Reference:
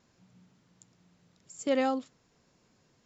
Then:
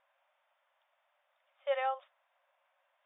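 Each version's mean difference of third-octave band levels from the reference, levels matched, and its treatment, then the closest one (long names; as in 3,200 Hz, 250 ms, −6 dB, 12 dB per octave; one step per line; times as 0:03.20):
7.5 dB: linear-phase brick-wall band-pass 530–3,700 Hz
high-frequency loss of the air 250 metres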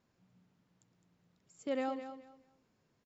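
2.0 dB: high-shelf EQ 5,900 Hz −11.5 dB
repeating echo 211 ms, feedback 23%, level −10.5 dB
level −8 dB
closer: second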